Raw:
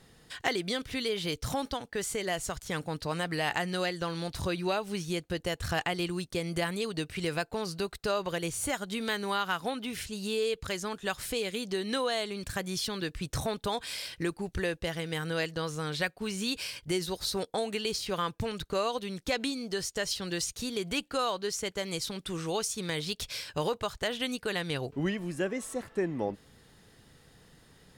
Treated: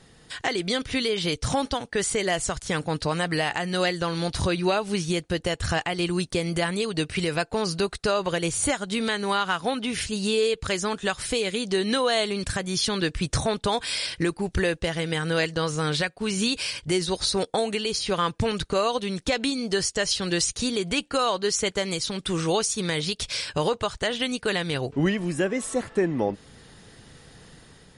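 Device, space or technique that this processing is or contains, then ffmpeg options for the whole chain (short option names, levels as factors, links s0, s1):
low-bitrate web radio: -af "dynaudnorm=f=120:g=7:m=1.68,alimiter=limit=0.133:level=0:latency=1:release=350,volume=1.78" -ar 44100 -c:a libmp3lame -b:a 48k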